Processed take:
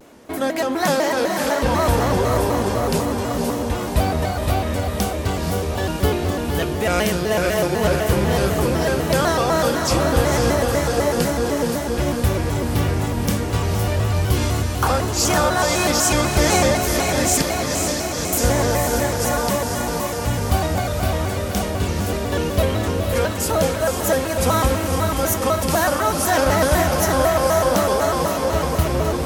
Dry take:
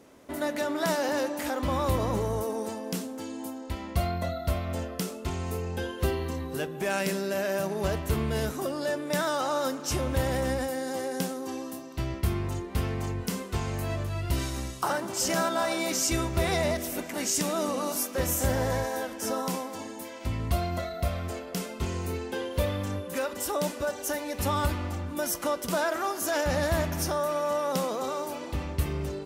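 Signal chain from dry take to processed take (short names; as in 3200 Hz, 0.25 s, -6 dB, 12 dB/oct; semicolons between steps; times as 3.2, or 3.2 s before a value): 17.42–18.33 ladder low-pass 5300 Hz, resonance 65%; diffused feedback echo 0.51 s, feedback 69%, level -4 dB; shaped vibrato square 4 Hz, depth 160 cents; gain +8 dB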